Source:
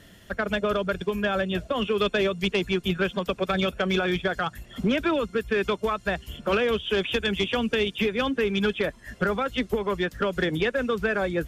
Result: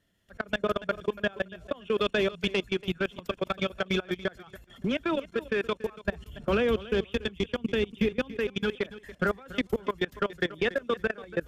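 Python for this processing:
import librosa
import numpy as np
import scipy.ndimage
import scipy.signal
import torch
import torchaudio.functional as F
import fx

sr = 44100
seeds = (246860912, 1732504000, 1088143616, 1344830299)

y = fx.level_steps(x, sr, step_db=24)
y = fx.low_shelf(y, sr, hz=350.0, db=9.5, at=(6.03, 8.37))
y = fx.echo_feedback(y, sr, ms=284, feedback_pct=18, wet_db=-17.0)
y = fx.rider(y, sr, range_db=10, speed_s=2.0)
y = F.gain(torch.from_numpy(y), -2.5).numpy()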